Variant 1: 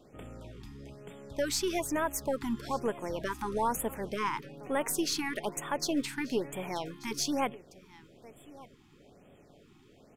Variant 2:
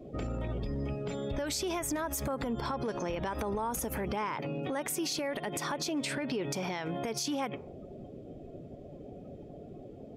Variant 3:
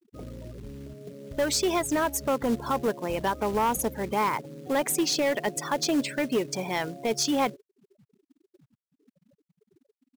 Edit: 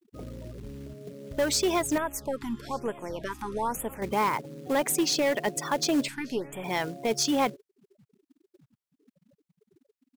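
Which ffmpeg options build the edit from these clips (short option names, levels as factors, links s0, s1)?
-filter_complex "[0:a]asplit=2[s0][s1];[2:a]asplit=3[s2][s3][s4];[s2]atrim=end=1.982[s5];[s0]atrim=start=1.978:end=4.022[s6];[s3]atrim=start=4.018:end=6.082[s7];[s1]atrim=start=6.078:end=6.642[s8];[s4]atrim=start=6.638[s9];[s5][s6]acrossfade=d=0.004:c1=hsin:c2=hsin[s10];[s10][s7]acrossfade=d=0.004:c1=hsin:c2=hsin[s11];[s11][s8]acrossfade=d=0.004:c1=hsin:c2=hsin[s12];[s12][s9]acrossfade=d=0.004:c1=hsin:c2=hsin"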